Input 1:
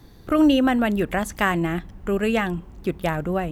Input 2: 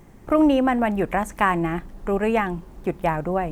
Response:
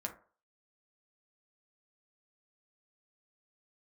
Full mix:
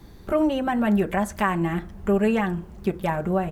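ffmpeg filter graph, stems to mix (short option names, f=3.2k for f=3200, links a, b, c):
-filter_complex "[0:a]alimiter=limit=-15dB:level=0:latency=1:release=127,volume=-4.5dB,asplit=2[a][b];[b]volume=-3dB[c];[1:a]adelay=5.4,volume=-5dB,asplit=2[d][e];[e]apad=whole_len=155083[f];[a][f]sidechaincompress=threshold=-30dB:ratio=8:attack=16:release=353[g];[2:a]atrim=start_sample=2205[h];[c][h]afir=irnorm=-1:irlink=0[i];[g][d][i]amix=inputs=3:normalize=0,equalizer=f=70:t=o:w=1:g=5"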